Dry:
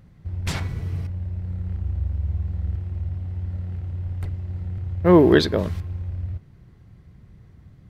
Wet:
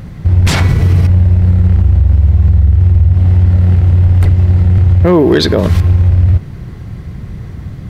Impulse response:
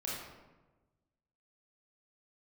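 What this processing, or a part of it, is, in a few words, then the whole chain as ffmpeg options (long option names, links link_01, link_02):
loud club master: -filter_complex "[0:a]asettb=1/sr,asplit=3[link_01][link_02][link_03];[link_01]atrim=end=2.474[link_04];[link_02]atrim=start=2.47:end=3.13,asetpts=PTS-STARTPTS,afade=type=in:duration=0.004:curve=qsin,afade=type=out:start_time=0.656:duration=0.004:curve=qsin,equalizer=frequency=67:width_type=o:width=1.7:gain=5.5[link_05];[link_03]atrim=start=3.126[link_06];[link_04][link_05]acrossfade=duration=0.004:curve1=hsin:curve2=qsin[link_07];[link_07][link_06]acrossfade=duration=0.004:curve1=qsin:curve2=hsin,acompressor=threshold=-25dB:ratio=2.5,asoftclip=type=hard:threshold=-16dB,alimiter=level_in=24dB:limit=-1dB:release=50:level=0:latency=1,volume=-1dB"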